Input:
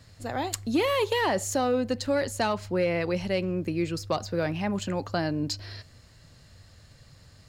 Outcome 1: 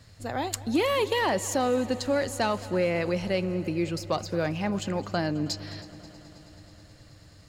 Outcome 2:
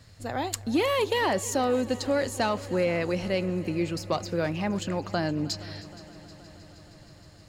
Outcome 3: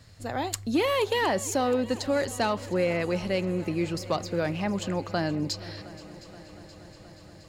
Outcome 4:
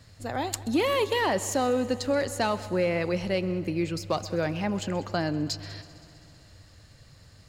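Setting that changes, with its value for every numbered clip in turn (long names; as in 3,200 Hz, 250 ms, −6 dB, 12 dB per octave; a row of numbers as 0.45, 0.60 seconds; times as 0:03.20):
echo machine with several playback heads, delay time: 107, 157, 238, 65 milliseconds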